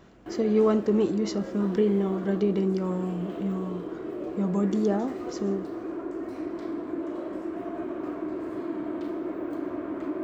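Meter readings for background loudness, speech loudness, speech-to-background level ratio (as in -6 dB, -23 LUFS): -35.0 LUFS, -27.0 LUFS, 8.0 dB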